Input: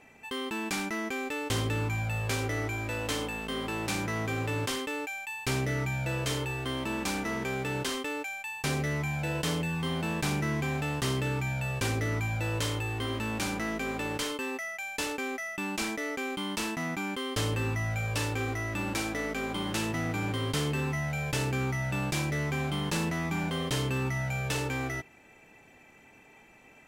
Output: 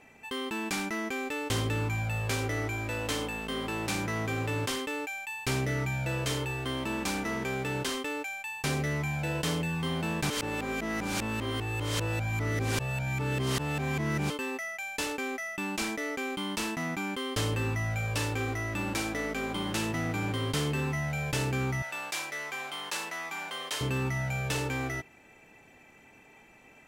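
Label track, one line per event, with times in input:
10.300000	14.300000	reverse
21.820000	23.810000	high-pass filter 750 Hz

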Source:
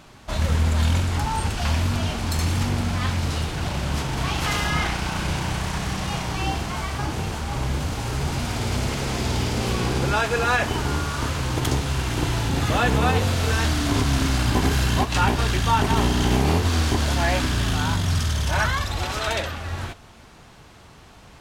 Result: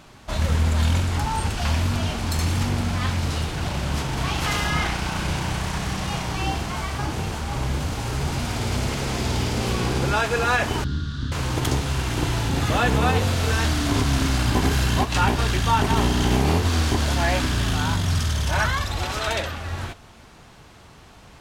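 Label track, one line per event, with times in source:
10.840000	11.320000	drawn EQ curve 250 Hz 0 dB, 440 Hz −17 dB, 790 Hz −28 dB, 1,600 Hz −6 dB, 2,300 Hz −23 dB, 3,600 Hz −1 dB, 7,200 Hz −19 dB, 12,000 Hz −29 dB

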